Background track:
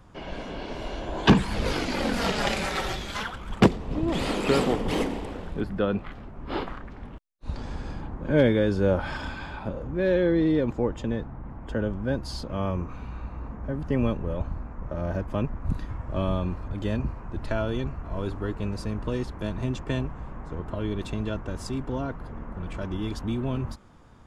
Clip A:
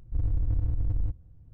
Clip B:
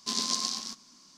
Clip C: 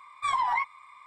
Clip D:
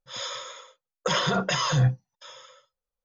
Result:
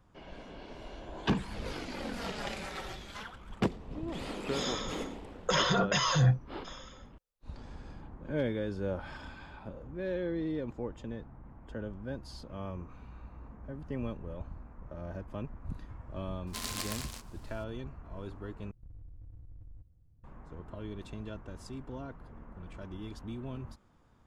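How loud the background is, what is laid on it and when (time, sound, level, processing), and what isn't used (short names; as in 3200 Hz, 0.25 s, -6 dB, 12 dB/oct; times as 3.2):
background track -12 dB
4.43 add D -3 dB
16.47 add B -8 dB + noise-modulated delay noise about 2400 Hz, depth 0.04 ms
18.71 replace with A -11.5 dB + compressor 10:1, threshold -34 dBFS
not used: C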